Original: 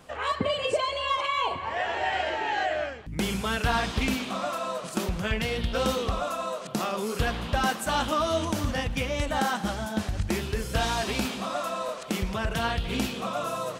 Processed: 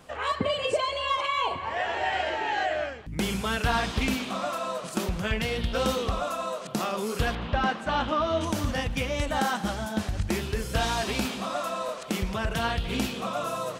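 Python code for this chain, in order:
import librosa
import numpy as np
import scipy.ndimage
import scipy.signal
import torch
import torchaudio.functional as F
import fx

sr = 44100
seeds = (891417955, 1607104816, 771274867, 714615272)

y = fx.lowpass(x, sr, hz=3200.0, slope=12, at=(7.35, 8.41))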